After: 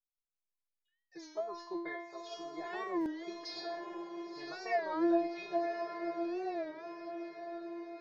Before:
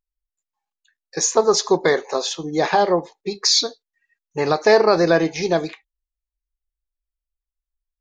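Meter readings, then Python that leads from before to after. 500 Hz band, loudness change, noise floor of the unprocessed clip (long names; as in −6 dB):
−18.5 dB, −19.5 dB, below −85 dBFS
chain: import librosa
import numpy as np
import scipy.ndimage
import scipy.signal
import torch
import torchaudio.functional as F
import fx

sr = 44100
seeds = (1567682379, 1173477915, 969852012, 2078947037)

y = scipy.signal.medfilt(x, 3)
y = fx.env_lowpass_down(y, sr, base_hz=2700.0, full_db=-16.5)
y = fx.peak_eq(y, sr, hz=260.0, db=-13.5, octaves=0.27)
y = fx.rider(y, sr, range_db=10, speed_s=2.0)
y = fx.vibrato(y, sr, rate_hz=5.1, depth_cents=23.0)
y = fx.air_absorb(y, sr, metres=120.0)
y = fx.stiff_resonator(y, sr, f0_hz=340.0, decay_s=0.69, stiffness=0.002)
y = fx.echo_diffused(y, sr, ms=1069, feedback_pct=54, wet_db=-5.5)
y = fx.buffer_glitch(y, sr, at_s=(3.02,), block=256, repeats=8)
y = fx.record_warp(y, sr, rpm=33.33, depth_cents=160.0)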